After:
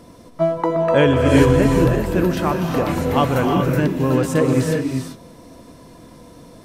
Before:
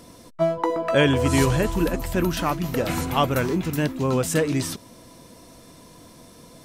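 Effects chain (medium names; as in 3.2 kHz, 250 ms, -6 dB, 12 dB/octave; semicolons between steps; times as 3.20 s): treble shelf 2.4 kHz -9 dB; gated-style reverb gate 420 ms rising, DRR 2 dB; trim +3.5 dB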